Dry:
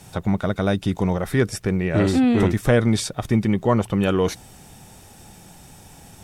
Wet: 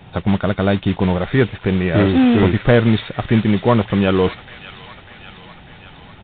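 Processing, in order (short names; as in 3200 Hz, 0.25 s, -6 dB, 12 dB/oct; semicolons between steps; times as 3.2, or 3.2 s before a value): modulation noise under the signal 12 dB; on a send: thin delay 0.596 s, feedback 67%, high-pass 1600 Hz, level -10.5 dB; on the sum: downsampling 8000 Hz; gain +4.5 dB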